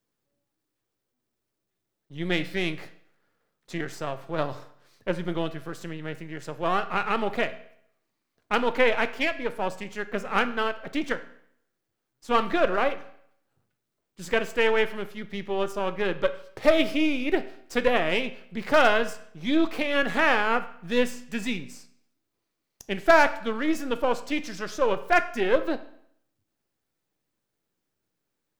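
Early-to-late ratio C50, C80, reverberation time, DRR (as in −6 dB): 14.5 dB, 17.0 dB, 0.65 s, 10.0 dB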